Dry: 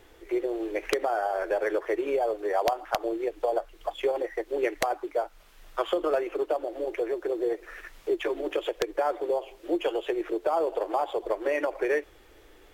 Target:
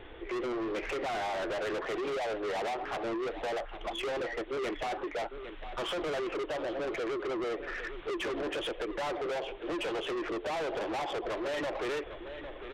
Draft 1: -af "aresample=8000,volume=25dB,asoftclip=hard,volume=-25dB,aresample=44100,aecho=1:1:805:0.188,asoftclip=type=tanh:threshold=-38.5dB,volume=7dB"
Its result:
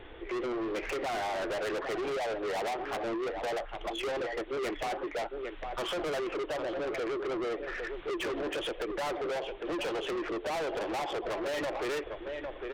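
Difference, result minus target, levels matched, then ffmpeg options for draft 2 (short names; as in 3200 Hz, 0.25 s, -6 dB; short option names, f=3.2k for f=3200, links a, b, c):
overloaded stage: distortion -6 dB
-af "aresample=8000,volume=34dB,asoftclip=hard,volume=-34dB,aresample=44100,aecho=1:1:805:0.188,asoftclip=type=tanh:threshold=-38.5dB,volume=7dB"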